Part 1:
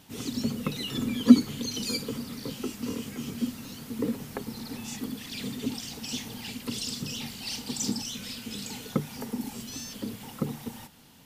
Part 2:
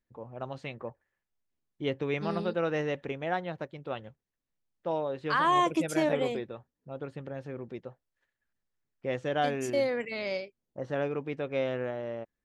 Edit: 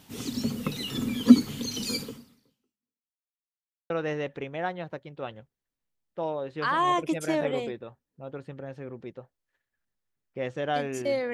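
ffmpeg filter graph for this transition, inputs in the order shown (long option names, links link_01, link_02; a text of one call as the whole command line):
ffmpeg -i cue0.wav -i cue1.wav -filter_complex "[0:a]apad=whole_dur=11.33,atrim=end=11.33,asplit=2[link_01][link_02];[link_01]atrim=end=3.38,asetpts=PTS-STARTPTS,afade=type=out:start_time=2.02:duration=1.36:curve=exp[link_03];[link_02]atrim=start=3.38:end=3.9,asetpts=PTS-STARTPTS,volume=0[link_04];[1:a]atrim=start=2.58:end=10.01,asetpts=PTS-STARTPTS,afade=type=in:duration=0.004:curve=hsin[link_05];[link_03][link_04][link_05]concat=n=3:v=0:a=1" out.wav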